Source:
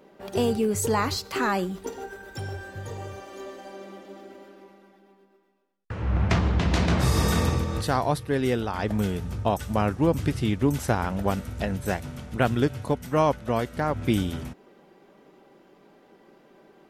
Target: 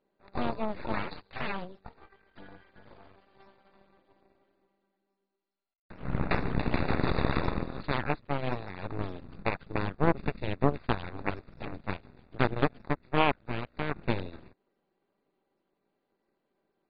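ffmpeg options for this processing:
-filter_complex "[0:a]aeval=exprs='0.316*(cos(1*acos(clip(val(0)/0.316,-1,1)))-cos(1*PI/2))+0.00501*(cos(2*acos(clip(val(0)/0.316,-1,1)))-cos(2*PI/2))+0.112*(cos(3*acos(clip(val(0)/0.316,-1,1)))-cos(3*PI/2))+0.0631*(cos(4*acos(clip(val(0)/0.316,-1,1)))-cos(4*PI/2))':c=same,acrossover=split=4000[a][b];[b]acompressor=threshold=-56dB:ratio=4:attack=1:release=60[c];[a][c]amix=inputs=2:normalize=0" -ar 44100 -c:a mp2 -b:a 32k

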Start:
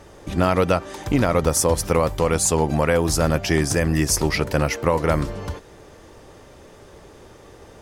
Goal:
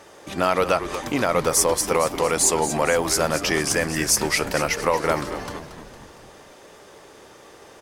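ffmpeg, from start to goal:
-filter_complex "[0:a]highpass=f=590:p=1,asplit=2[a][b];[b]asoftclip=type=tanh:threshold=-17.5dB,volume=-8.5dB[c];[a][c]amix=inputs=2:normalize=0,asplit=7[d][e][f][g][h][i][j];[e]adelay=229,afreqshift=-110,volume=-11dB[k];[f]adelay=458,afreqshift=-220,volume=-16.5dB[l];[g]adelay=687,afreqshift=-330,volume=-22dB[m];[h]adelay=916,afreqshift=-440,volume=-27.5dB[n];[i]adelay=1145,afreqshift=-550,volume=-33.1dB[o];[j]adelay=1374,afreqshift=-660,volume=-38.6dB[p];[d][k][l][m][n][o][p]amix=inputs=7:normalize=0"

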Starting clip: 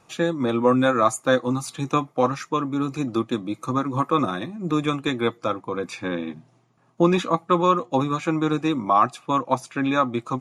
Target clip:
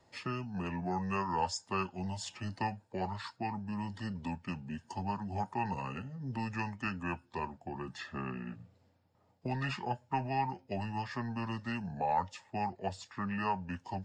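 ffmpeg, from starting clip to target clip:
-filter_complex "[0:a]acrossover=split=250|1100[a][b][c];[a]asoftclip=type=tanh:threshold=-27dB[d];[b]acompressor=threshold=-35dB:ratio=6[e];[d][e][c]amix=inputs=3:normalize=0,asetrate=32667,aresample=44100,volume=-8.5dB"

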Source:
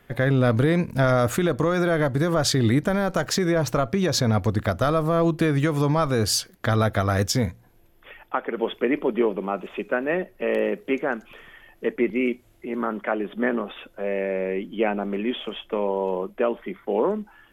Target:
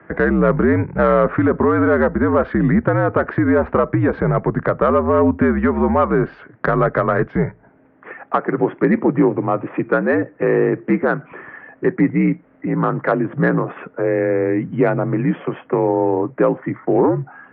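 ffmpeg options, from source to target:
-filter_complex "[0:a]asplit=2[a][b];[b]acompressor=threshold=-31dB:ratio=6,volume=1.5dB[c];[a][c]amix=inputs=2:normalize=0,highpass=f=200:t=q:w=0.5412,highpass=f=200:t=q:w=1.307,lowpass=f=2k:t=q:w=0.5176,lowpass=f=2k:t=q:w=0.7071,lowpass=f=2k:t=q:w=1.932,afreqshift=-71,acontrast=44"

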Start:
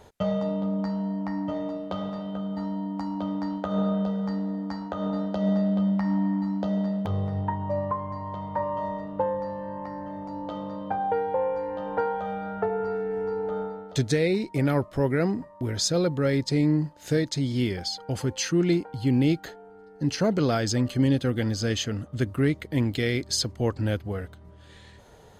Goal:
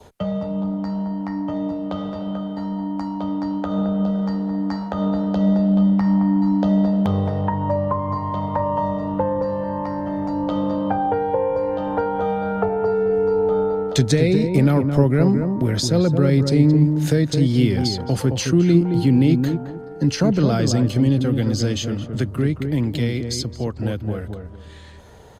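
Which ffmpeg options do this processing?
-filter_complex "[0:a]asettb=1/sr,asplit=3[a][b][c];[a]atrim=end=17.854[d];[b]atrim=start=17.85:end=19.41,asetpts=PTS-STARTPTS,afade=t=in:d=0.004:c=qsin,afade=t=out:st=1.556:d=0.004:c=qsin,bandreject=f=50:t=h:w=6,bandreject=f=100:t=h:w=6,bandreject=f=150:t=h:w=6[e];[c]atrim=start=19.406[f];[d][e]acrossfade=d=0.004:c1=hsin:c2=qsin[g];[g][f]acrossfade=d=0.004:c1=qsin:c2=hsin,adynamicequalizer=threshold=0.00282:dfrequency=1800:dqfactor=2.7:tfrequency=1800:tqfactor=2.7:attack=5:release=100:ratio=0.375:range=3:mode=cutabove:tftype=bell,acrossover=split=210[h][i];[i]acompressor=threshold=-34dB:ratio=2.5[j];[h][j]amix=inputs=2:normalize=0,acrossover=split=130[k][l];[k]alimiter=level_in=11dB:limit=-24dB:level=0:latency=1,volume=-11dB[m];[m][l]amix=inputs=2:normalize=0,dynaudnorm=f=800:g=13:m=6dB,asplit=2[n][o];[o]adelay=218,lowpass=f=1k:p=1,volume=-5dB,asplit=2[p][q];[q]adelay=218,lowpass=f=1k:p=1,volume=0.25,asplit=2[r][s];[s]adelay=218,lowpass=f=1k:p=1,volume=0.25[t];[n][p][r][t]amix=inputs=4:normalize=0,volume=5.5dB" -ar 48000 -c:a libopus -b:a 48k

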